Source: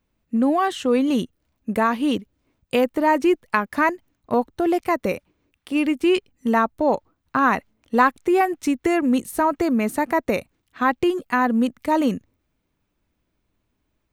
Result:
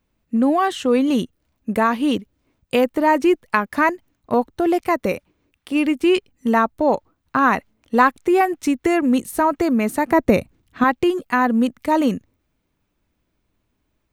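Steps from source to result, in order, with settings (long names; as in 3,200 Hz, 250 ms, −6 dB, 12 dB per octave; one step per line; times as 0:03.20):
0:10.11–0:10.84: low-shelf EQ 360 Hz +10.5 dB
level +2 dB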